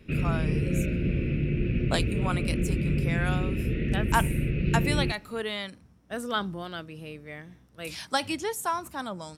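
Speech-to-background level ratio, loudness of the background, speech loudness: -4.5 dB, -28.0 LUFS, -32.5 LUFS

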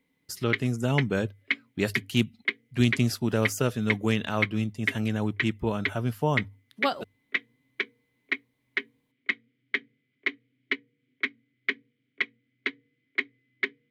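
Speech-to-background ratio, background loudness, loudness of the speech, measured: 4.0 dB, -32.5 LUFS, -28.5 LUFS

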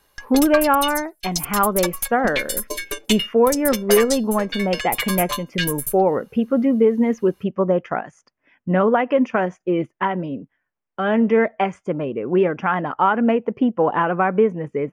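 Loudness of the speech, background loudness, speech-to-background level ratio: -20.0 LUFS, -25.5 LUFS, 5.5 dB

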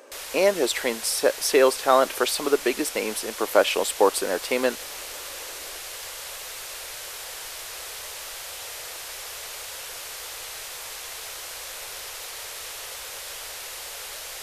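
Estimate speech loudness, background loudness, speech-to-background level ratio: -23.0 LUFS, -34.0 LUFS, 11.0 dB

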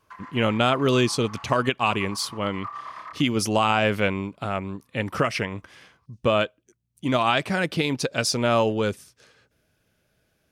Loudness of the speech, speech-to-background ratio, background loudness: -24.0 LUFS, 17.0 dB, -41.0 LUFS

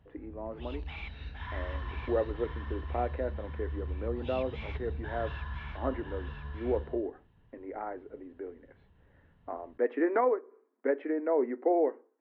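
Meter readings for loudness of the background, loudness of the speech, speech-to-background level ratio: -40.5 LUFS, -34.0 LUFS, 6.5 dB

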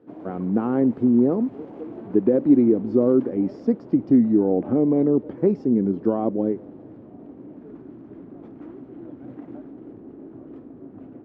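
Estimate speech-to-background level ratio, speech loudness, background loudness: 19.5 dB, -21.0 LUFS, -40.5 LUFS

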